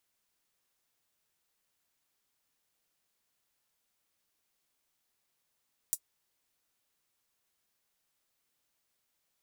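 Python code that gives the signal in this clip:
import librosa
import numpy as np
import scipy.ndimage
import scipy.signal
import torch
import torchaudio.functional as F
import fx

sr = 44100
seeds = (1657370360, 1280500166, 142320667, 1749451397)

y = fx.drum_hat(sr, length_s=0.24, from_hz=7700.0, decay_s=0.07)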